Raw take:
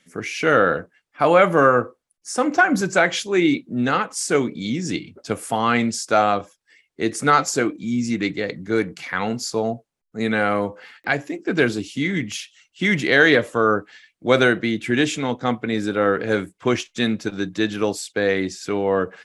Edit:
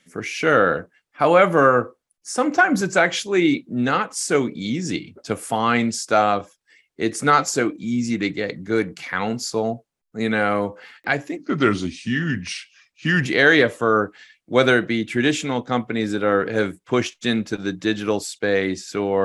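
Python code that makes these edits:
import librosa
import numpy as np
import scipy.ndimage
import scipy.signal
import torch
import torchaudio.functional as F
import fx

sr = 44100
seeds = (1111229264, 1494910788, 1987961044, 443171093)

y = fx.edit(x, sr, fx.speed_span(start_s=11.37, length_s=1.62, speed=0.86), tone=tone)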